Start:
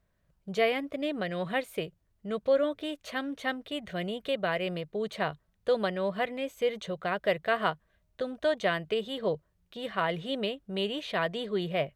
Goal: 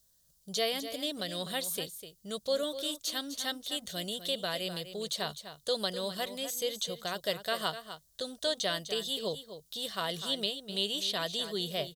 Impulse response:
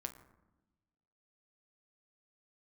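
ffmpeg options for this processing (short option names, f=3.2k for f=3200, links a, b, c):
-filter_complex "[0:a]asplit=2[a][b];[b]adelay=250.7,volume=-11dB,highshelf=f=4k:g=-5.64[c];[a][c]amix=inputs=2:normalize=0,acrossover=split=4200[d][e];[e]acompressor=threshold=-53dB:ratio=4:attack=1:release=60[f];[d][f]amix=inputs=2:normalize=0,aexciter=amount=15.6:drive=6.1:freq=3.6k,volume=-6.5dB"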